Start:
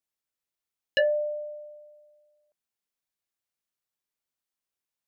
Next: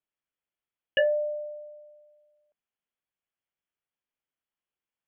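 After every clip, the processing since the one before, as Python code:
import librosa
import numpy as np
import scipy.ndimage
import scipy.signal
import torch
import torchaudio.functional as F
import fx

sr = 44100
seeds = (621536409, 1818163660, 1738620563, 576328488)

y = scipy.signal.sosfilt(scipy.signal.cheby1(10, 1.0, 3400.0, 'lowpass', fs=sr, output='sos'), x)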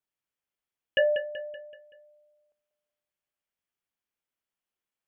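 y = fx.echo_feedback(x, sr, ms=190, feedback_pct=48, wet_db=-10)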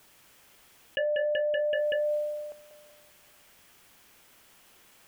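y = fx.env_flatten(x, sr, amount_pct=100)
y = y * librosa.db_to_amplitude(-7.0)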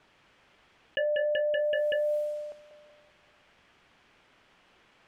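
y = fx.env_lowpass(x, sr, base_hz=2900.0, full_db=-26.0)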